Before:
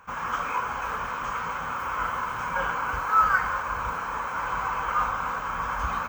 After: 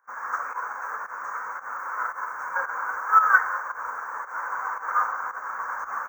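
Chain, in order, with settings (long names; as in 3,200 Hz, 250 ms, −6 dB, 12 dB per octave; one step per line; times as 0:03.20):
Chebyshev band-stop filter 1,800–6,000 Hz, order 3
spectral tilt +4 dB per octave
fake sidechain pumping 113 BPM, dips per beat 1, −11 dB, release 105 ms
three-way crossover with the lows and the highs turned down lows −16 dB, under 310 Hz, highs −18 dB, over 4,100 Hz
expander for the loud parts 1.5 to 1, over −47 dBFS
level +5 dB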